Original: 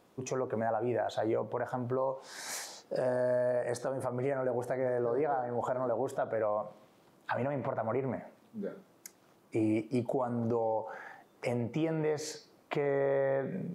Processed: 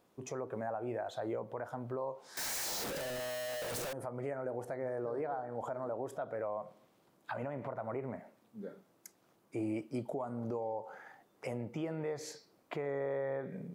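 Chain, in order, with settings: 2.37–3.93 s: one-bit comparator; treble shelf 11 kHz +5 dB; trim -6.5 dB

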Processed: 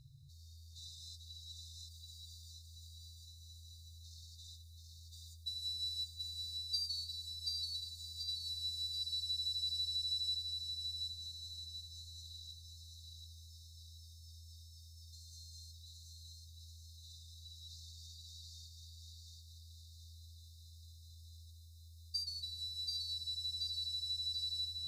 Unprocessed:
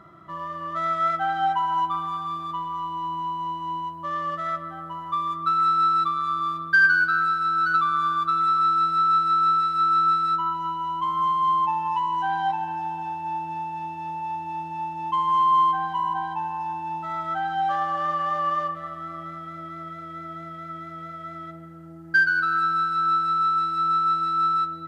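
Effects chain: FFT band-reject 150–3600 Hz; thinning echo 732 ms, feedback 47%, level -3 dB; trim +3 dB

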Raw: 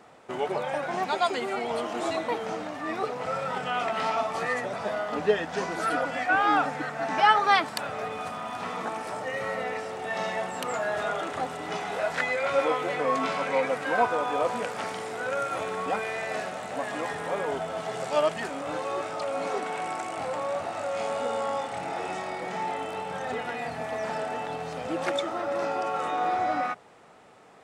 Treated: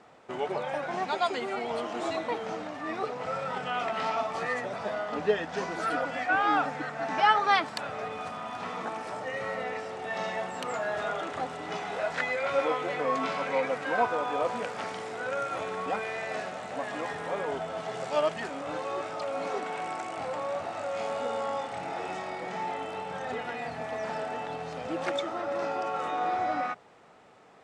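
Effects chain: low-pass 7.5 kHz 12 dB/octave; trim -2.5 dB

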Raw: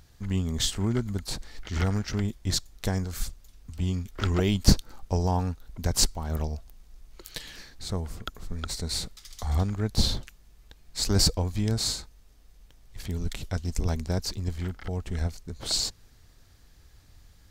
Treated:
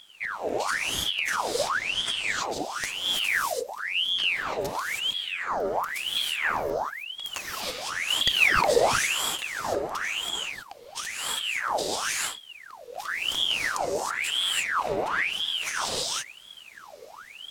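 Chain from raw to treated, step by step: compressor with a negative ratio -32 dBFS, ratio -1; 8.08–8.69 s: waveshaping leveller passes 2; gated-style reverb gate 350 ms rising, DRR -5.5 dB; ring modulator with a swept carrier 1.9 kHz, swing 75%, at 0.97 Hz

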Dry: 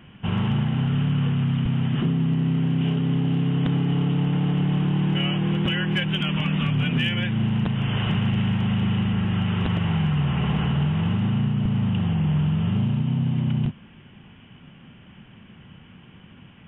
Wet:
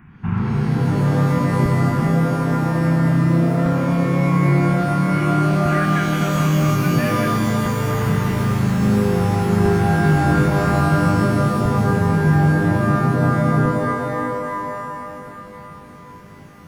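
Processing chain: static phaser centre 1.3 kHz, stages 4; pitch-shifted reverb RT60 3 s, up +12 st, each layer -2 dB, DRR 4 dB; trim +3.5 dB

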